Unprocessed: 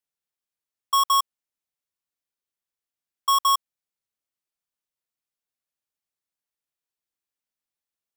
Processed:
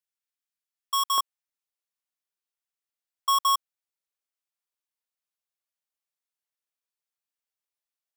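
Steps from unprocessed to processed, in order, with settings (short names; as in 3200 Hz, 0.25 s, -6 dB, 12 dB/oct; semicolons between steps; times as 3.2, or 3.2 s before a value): HPF 1200 Hz 12 dB/oct, from 1.18 s 500 Hz; gain -2.5 dB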